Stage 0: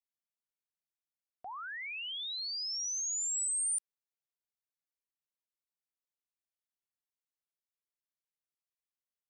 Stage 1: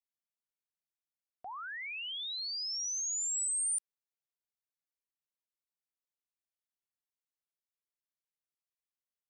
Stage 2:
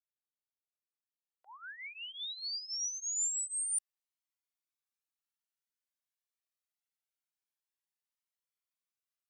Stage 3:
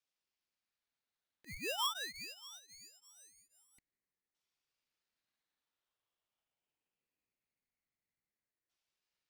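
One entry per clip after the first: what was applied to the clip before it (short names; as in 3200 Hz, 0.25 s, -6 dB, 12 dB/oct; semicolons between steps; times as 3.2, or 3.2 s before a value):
nothing audible
opening faded in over 2.99 s; HPF 950 Hz 12 dB/oct; cascading flanger rising 0.24 Hz; gain +3.5 dB
LFO low-pass saw down 0.23 Hz 760–4600 Hz; polarity switched at an audio rate 1100 Hz; gain +3.5 dB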